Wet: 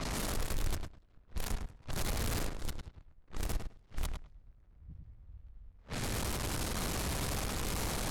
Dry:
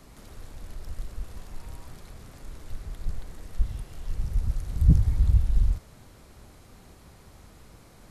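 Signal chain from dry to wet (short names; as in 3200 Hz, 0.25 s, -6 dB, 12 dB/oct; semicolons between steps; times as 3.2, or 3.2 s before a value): zero-crossing step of -32 dBFS; high shelf 2400 Hz +3 dB; flipped gate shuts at -26 dBFS, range -34 dB; on a send: darkening echo 0.104 s, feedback 16%, low-pass 3300 Hz, level -5 dB; on the sum: low-pass opened by the level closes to 1900 Hz, open at -31.5 dBFS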